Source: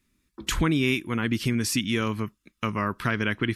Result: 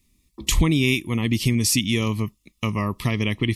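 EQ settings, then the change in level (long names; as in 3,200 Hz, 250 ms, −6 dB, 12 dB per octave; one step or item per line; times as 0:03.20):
Butterworth band-reject 1,500 Hz, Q 2.1
low-shelf EQ 160 Hz +10.5 dB
high-shelf EQ 2,800 Hz +9 dB
0.0 dB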